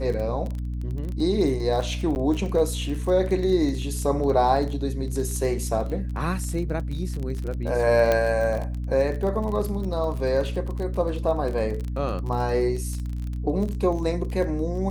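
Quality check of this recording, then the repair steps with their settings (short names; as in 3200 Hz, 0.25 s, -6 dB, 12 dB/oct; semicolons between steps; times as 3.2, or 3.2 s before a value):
crackle 26/s -29 dBFS
hum 60 Hz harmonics 5 -29 dBFS
2.15–2.16 gap 9.9 ms
8.12 pop -9 dBFS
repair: de-click; de-hum 60 Hz, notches 5; interpolate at 2.15, 9.9 ms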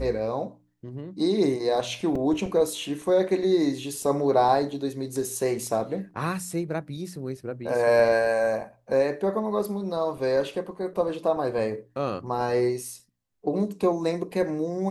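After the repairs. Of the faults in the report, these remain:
none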